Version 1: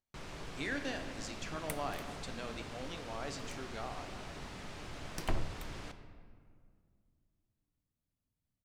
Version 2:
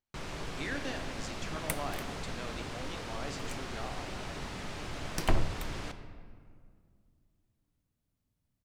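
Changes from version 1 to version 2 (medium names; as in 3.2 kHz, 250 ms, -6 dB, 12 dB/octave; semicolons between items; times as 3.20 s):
first sound +6.0 dB; second sound +7.0 dB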